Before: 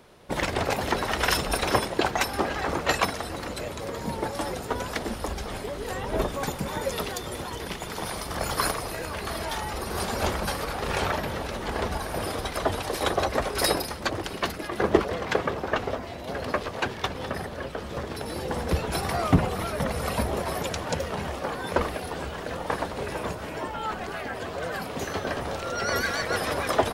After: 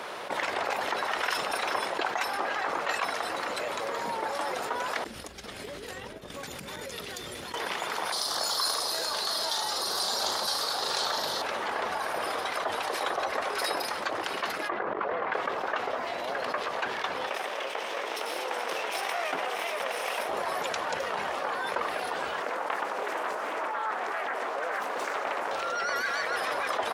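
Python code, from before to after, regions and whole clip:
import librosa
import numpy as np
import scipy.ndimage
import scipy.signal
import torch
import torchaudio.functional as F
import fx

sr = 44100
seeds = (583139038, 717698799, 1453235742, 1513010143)

y = fx.chain(x, sr, fx.tone_stack(knobs='10-0-1'),
    fx.over_compress(threshold_db=-49.0, ratio=-1.0), at=(5.04, 7.54))
y = fx.chain(y, sr, fx.high_shelf_res(hz=3200.0, db=9.5, q=3.0),
    fx.room_flutter(wall_m=6.3, rt60_s=0.25), at=(8.12, 11.42))
y = fx.chain(y, sr, fx.lowpass(hz=1800.0, slope=12),
    fx.over_compress(threshold_db=-28.0, ratio=-1.0), at=(14.69, 15.34))
y = fx.chain(y, sr, fx.lower_of_two(delay_ms=0.34),
    fx.highpass(hz=420.0, slope=12), at=(17.27, 20.29))
y = fx.chain(y, sr, fx.highpass(hz=220.0, slope=24),
    fx.peak_eq(hz=3500.0, db=-8.5, octaves=0.85),
    fx.doppler_dist(depth_ms=0.79), at=(22.42, 25.51))
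y = scipy.signal.sosfilt(scipy.signal.butter(2, 1000.0, 'highpass', fs=sr, output='sos'), y)
y = fx.tilt_eq(y, sr, slope=-3.5)
y = fx.env_flatten(y, sr, amount_pct=70)
y = y * 10.0 ** (-4.5 / 20.0)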